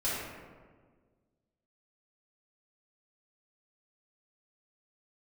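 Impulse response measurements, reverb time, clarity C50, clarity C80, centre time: 1.6 s, -2.5 dB, 0.5 dB, 0.101 s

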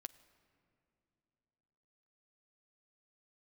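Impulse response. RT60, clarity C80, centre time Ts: not exponential, 18.0 dB, 5 ms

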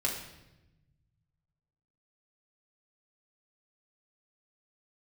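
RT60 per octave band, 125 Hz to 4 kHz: 2.5, 1.6, 1.1, 0.85, 0.90, 0.85 s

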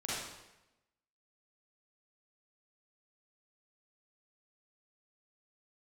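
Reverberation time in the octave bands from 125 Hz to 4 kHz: 1.0, 1.0, 1.0, 0.95, 0.95, 0.85 s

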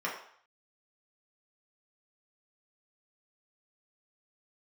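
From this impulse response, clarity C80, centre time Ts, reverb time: 9.0 dB, 32 ms, 0.60 s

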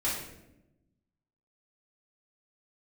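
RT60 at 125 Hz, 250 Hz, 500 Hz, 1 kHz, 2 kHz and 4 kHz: 1.5, 1.4, 1.1, 0.75, 0.70, 0.60 s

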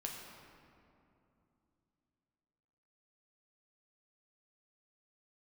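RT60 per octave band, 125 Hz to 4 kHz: 3.7, 3.7, 2.9, 2.7, 2.0, 1.4 s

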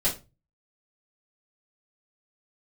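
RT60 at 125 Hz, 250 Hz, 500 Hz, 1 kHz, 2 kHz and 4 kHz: 0.55, 0.35, 0.30, 0.25, 0.25, 0.20 s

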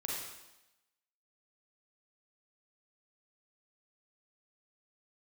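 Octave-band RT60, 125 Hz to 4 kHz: 0.80, 0.90, 0.95, 0.95, 0.95, 0.95 s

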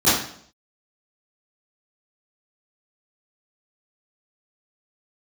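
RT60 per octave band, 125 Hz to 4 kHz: 0.65, 0.65, 0.65, 0.55, 0.55, 0.55 s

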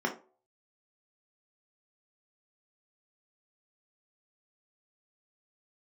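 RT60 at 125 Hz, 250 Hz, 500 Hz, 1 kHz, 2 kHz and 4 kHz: 0.35, 0.35, 0.45, 0.40, 0.25, 0.20 s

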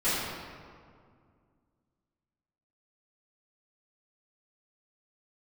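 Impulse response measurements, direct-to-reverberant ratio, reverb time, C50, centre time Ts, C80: -16.0 dB, 2.1 s, -2.5 dB, 0.123 s, 0.0 dB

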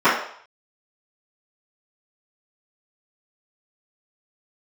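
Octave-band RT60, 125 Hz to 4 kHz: 0.30, 0.40, 0.55, 0.65, 0.55, 0.60 s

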